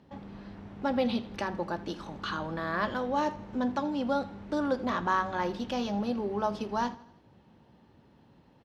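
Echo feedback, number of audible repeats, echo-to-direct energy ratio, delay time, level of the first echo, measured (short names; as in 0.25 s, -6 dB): 50%, 3, -18.0 dB, 81 ms, -19.0 dB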